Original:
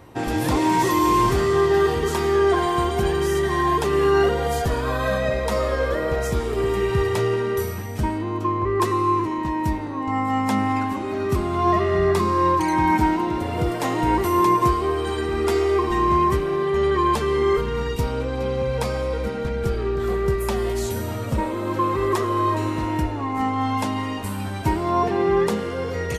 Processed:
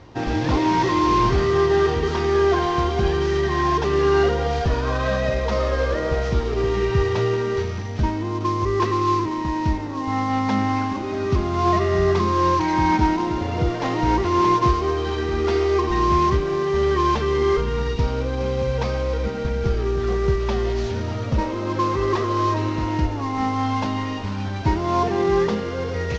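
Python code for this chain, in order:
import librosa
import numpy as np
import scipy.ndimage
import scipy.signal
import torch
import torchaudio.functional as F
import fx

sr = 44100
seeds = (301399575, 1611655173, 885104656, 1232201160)

y = fx.cvsd(x, sr, bps=32000)
y = fx.low_shelf(y, sr, hz=95.0, db=6.0)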